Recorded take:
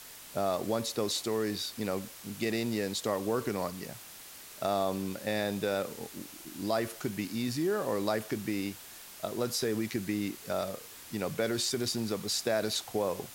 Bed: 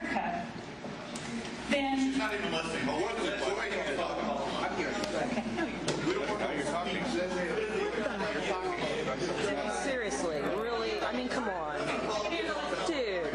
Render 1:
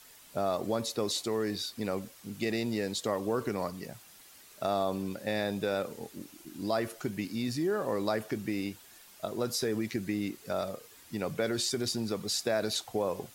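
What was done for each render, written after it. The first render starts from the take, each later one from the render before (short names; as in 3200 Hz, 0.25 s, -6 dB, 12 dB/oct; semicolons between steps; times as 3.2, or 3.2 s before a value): denoiser 8 dB, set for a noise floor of -49 dBFS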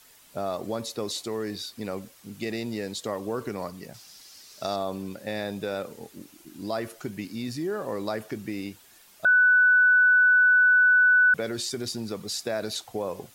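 3.94–4.76 bell 5100 Hz +13.5 dB 0.84 oct; 9.25–11.34 bleep 1490 Hz -15 dBFS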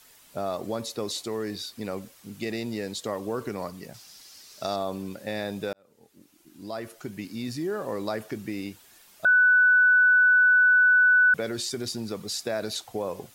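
5.73–7.48 fade in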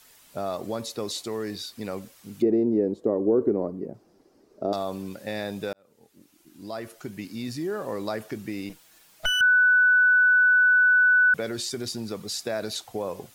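2.42–4.73 EQ curve 130 Hz 0 dB, 360 Hz +14 dB, 960 Hz -5 dB, 3500 Hz -26 dB; 8.69–9.41 minimum comb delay 6.3 ms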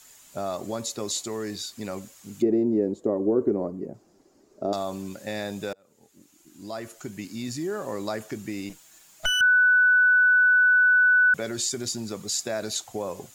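bell 7000 Hz +11.5 dB 0.31 oct; notch 470 Hz, Q 12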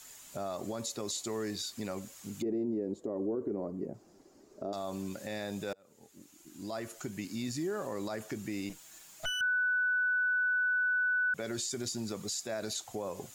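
compressor 1.5:1, threshold -39 dBFS, peak gain reduction 8 dB; limiter -26.5 dBFS, peak gain reduction 7.5 dB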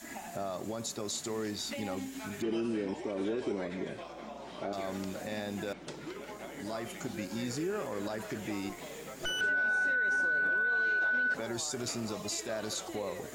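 add bed -12 dB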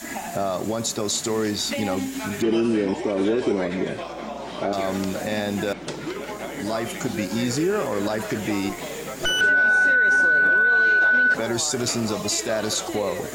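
gain +12 dB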